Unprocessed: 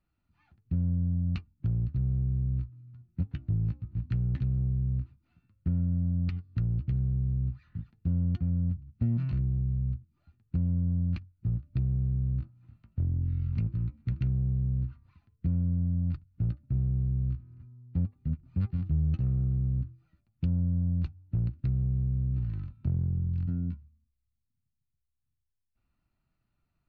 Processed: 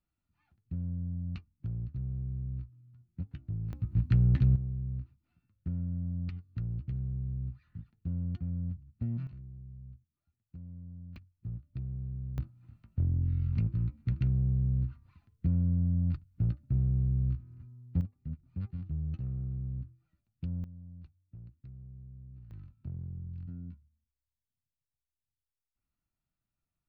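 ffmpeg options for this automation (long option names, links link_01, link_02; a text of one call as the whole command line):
ffmpeg -i in.wav -af "asetnsamples=nb_out_samples=441:pad=0,asendcmd='3.73 volume volume 5dB;4.56 volume volume -6.5dB;9.27 volume volume -18dB;11.16 volume volume -9.5dB;12.38 volume volume 0dB;18.01 volume volume -8dB;20.64 volume volume -20dB;22.51 volume volume -11.5dB',volume=-7.5dB" out.wav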